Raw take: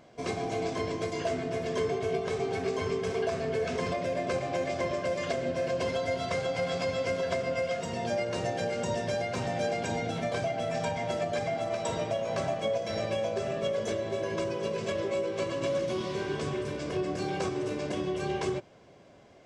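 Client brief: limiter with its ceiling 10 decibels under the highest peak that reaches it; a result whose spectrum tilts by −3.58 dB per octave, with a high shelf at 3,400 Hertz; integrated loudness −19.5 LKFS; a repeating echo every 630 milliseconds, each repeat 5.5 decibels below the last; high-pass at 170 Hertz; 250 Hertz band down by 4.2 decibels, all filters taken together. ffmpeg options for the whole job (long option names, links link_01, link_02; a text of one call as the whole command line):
ffmpeg -i in.wav -af "highpass=170,equalizer=frequency=250:width_type=o:gain=-5,highshelf=frequency=3400:gain=5,alimiter=level_in=3.5dB:limit=-24dB:level=0:latency=1,volume=-3.5dB,aecho=1:1:630|1260|1890|2520|3150|3780|4410:0.531|0.281|0.149|0.079|0.0419|0.0222|0.0118,volume=15dB" out.wav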